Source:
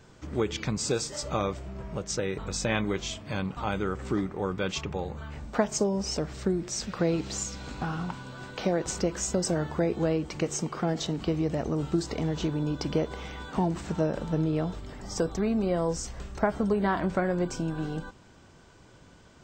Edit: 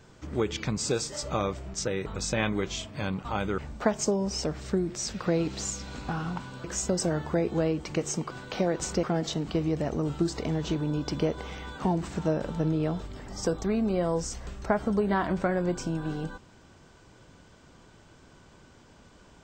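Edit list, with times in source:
0:01.74–0:02.06: remove
0:03.90–0:05.31: remove
0:08.37–0:09.09: move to 0:10.76

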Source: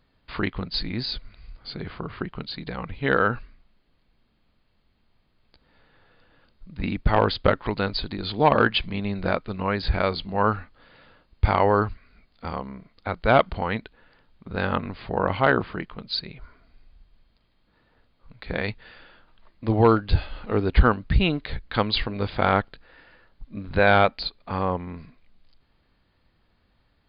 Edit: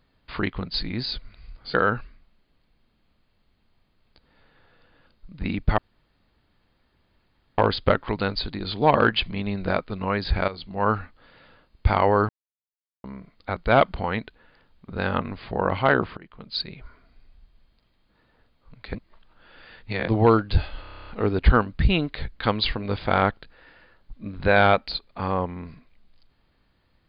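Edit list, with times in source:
0:01.74–0:03.12: remove
0:07.16: splice in room tone 1.80 s
0:10.06–0:10.49: fade in, from −13.5 dB
0:11.87–0:12.62: silence
0:15.75–0:16.19: fade in, from −23 dB
0:18.53–0:19.66: reverse
0:20.39: stutter 0.03 s, 10 plays

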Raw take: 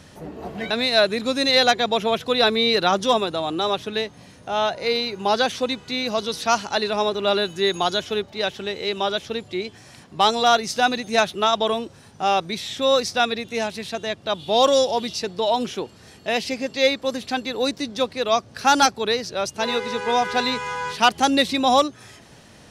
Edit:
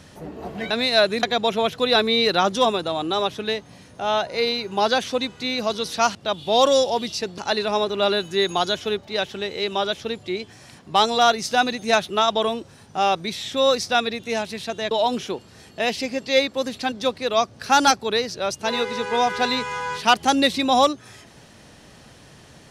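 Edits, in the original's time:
0:01.23–0:01.71: remove
0:14.16–0:15.39: move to 0:06.63
0:17.40–0:17.87: remove

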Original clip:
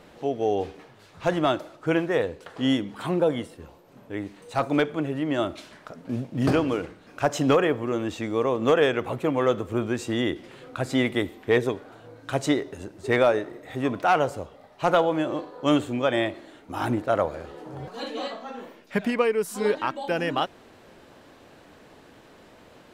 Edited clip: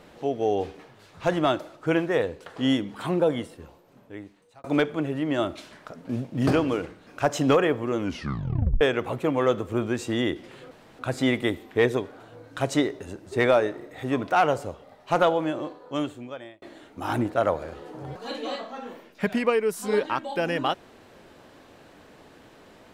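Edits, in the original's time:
0:03.53–0:04.64: fade out linear
0:07.97: tape stop 0.84 s
0:10.71: splice in room tone 0.28 s
0:14.92–0:16.34: fade out

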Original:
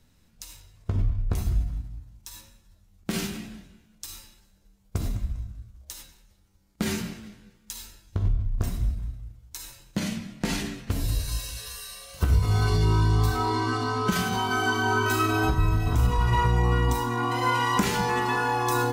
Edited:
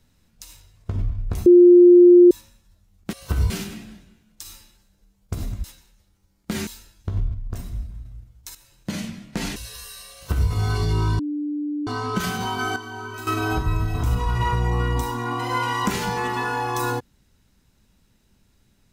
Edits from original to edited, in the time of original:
0:01.46–0:02.31: beep over 353 Hz −6.5 dBFS
0:05.27–0:05.95: remove
0:06.98–0:07.75: remove
0:08.42–0:09.13: clip gain −4 dB
0:09.63–0:10.03: fade in, from −13 dB
0:10.64–0:11.48: remove
0:12.05–0:12.42: duplicate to 0:03.13
0:13.11–0:13.79: beep over 295 Hz −23.5 dBFS
0:14.68–0:15.19: clip gain −10.5 dB

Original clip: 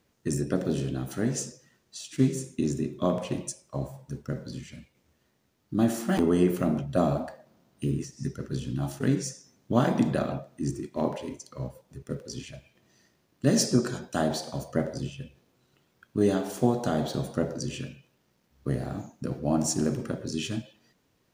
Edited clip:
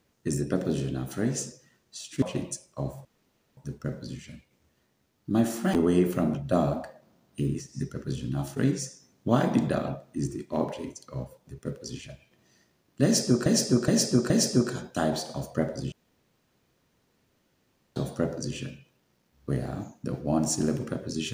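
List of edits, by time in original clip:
0:02.22–0:03.18: remove
0:04.01: splice in room tone 0.52 s
0:13.48–0:13.90: repeat, 4 plays
0:15.10–0:17.14: fill with room tone

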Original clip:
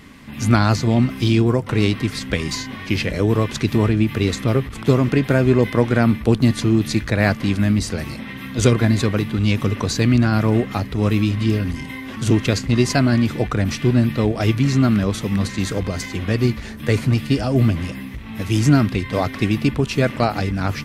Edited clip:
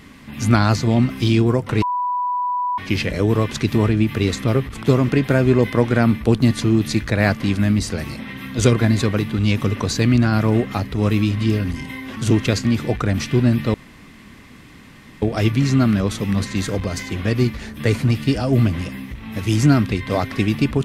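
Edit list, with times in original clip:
0:01.82–0:02.78: beep over 987 Hz −18.5 dBFS
0:12.65–0:13.16: remove
0:14.25: splice in room tone 1.48 s

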